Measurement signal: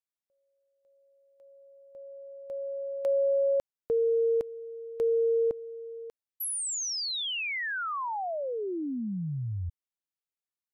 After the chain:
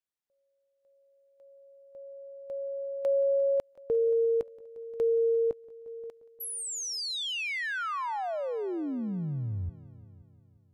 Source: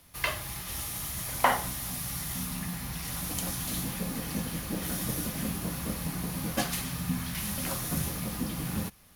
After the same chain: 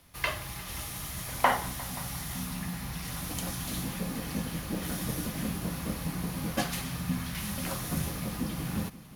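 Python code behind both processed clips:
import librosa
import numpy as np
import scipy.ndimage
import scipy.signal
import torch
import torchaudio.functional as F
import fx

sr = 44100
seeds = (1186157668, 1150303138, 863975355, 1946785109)

p1 = fx.high_shelf(x, sr, hz=6400.0, db=-5.5)
y = p1 + fx.echo_heads(p1, sr, ms=176, heads='all three', feedback_pct=42, wet_db=-22.5, dry=0)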